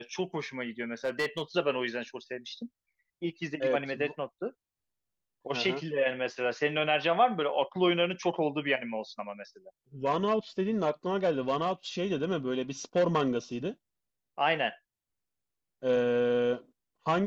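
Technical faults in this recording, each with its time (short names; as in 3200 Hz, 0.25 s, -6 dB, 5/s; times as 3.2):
1.05–1.42 clipped -25 dBFS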